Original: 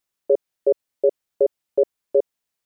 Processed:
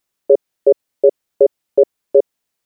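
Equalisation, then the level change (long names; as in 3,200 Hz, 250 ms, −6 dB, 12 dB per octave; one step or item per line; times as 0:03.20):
parametric band 310 Hz +2.5 dB 2.1 octaves
+5.0 dB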